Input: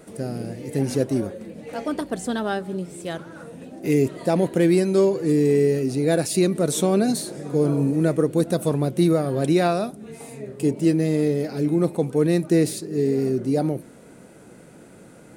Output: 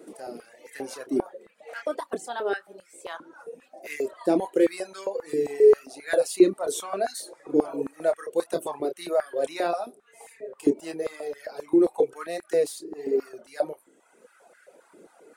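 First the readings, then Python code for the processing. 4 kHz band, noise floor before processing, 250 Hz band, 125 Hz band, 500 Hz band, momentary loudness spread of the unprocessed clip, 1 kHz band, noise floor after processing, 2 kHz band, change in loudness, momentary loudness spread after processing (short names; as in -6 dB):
-6.5 dB, -47 dBFS, -8.0 dB, -25.5 dB, -2.5 dB, 13 LU, -2.5 dB, -61 dBFS, -2.5 dB, -4.5 dB, 20 LU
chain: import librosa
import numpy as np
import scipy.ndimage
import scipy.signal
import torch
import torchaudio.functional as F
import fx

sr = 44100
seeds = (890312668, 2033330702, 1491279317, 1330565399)

y = fx.chorus_voices(x, sr, voices=2, hz=1.4, base_ms=28, depth_ms=3.0, mix_pct=30)
y = fx.dereverb_blind(y, sr, rt60_s=1.3)
y = fx.filter_held_highpass(y, sr, hz=7.5, low_hz=330.0, high_hz=1600.0)
y = y * librosa.db_to_amplitude(-3.5)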